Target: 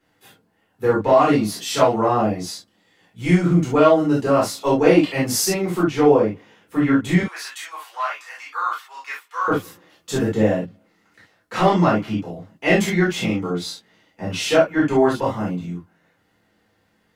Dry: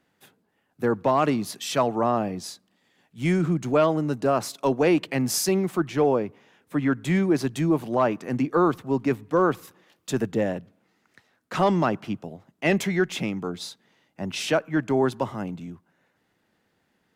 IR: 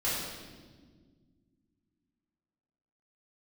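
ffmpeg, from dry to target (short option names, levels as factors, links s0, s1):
-filter_complex "[0:a]asettb=1/sr,asplit=3[s0][s1][s2];[s0]atrim=end=7.204[s3];[s1]atrim=start=7.2:end=9.48,asetpts=PTS-STARTPTS,afade=t=in:d=0.004:c=qsin,afade=t=out:st=2.276:d=0.004:c=qsin,highpass=f=1100:w=0.5412,highpass=f=1100:w=1.3066[s4];[s2]atrim=start=9.476[s5];[s3][s4]acrossfade=d=0.004:c1=hsin:c2=qsin[s6];[s6][s5]acrossfade=d=0.004:c1=qsin:c2=hsin[s7];[1:a]atrim=start_sample=2205,atrim=end_sample=3528[s8];[s7][s8]afir=irnorm=-1:irlink=0"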